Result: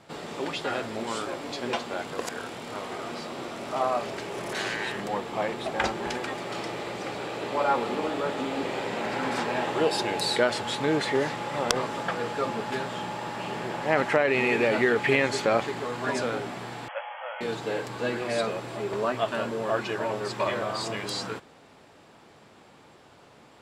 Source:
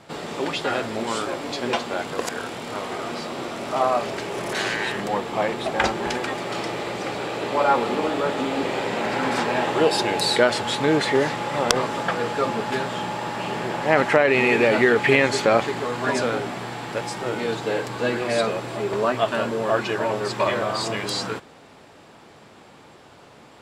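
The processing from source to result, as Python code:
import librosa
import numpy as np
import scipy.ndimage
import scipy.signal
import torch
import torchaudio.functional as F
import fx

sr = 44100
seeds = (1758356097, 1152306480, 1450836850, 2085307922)

y = fx.brickwall_bandpass(x, sr, low_hz=500.0, high_hz=3400.0, at=(16.88, 17.41))
y = F.gain(torch.from_numpy(y), -5.5).numpy()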